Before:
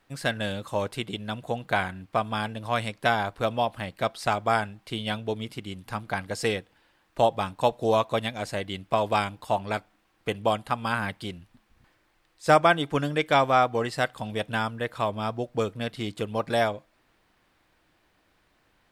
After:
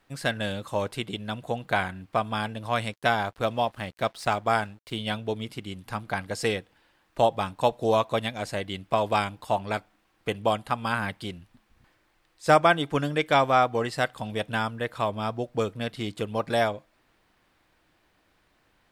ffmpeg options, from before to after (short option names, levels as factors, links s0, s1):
-filter_complex "[0:a]asettb=1/sr,asplit=3[s0][s1][s2];[s0]atrim=end=2.934[s3];[s1]atrim=start=2.93:end=4.97,asetpts=PTS-STARTPTS,afade=t=in:d=0.004:c=qsin,afade=t=out:st=2.036:d=0.004:c=qsin,aeval=exprs='sgn(val(0))*max(abs(val(0))-0.00237,0)':c=same[s4];[s2]atrim=start=4.966[s5];[s3][s4]acrossfade=d=0.004:c1=hsin:c2=qsin[s6];[s6][s5]acrossfade=d=0.004:c1=qsin:c2=hsin"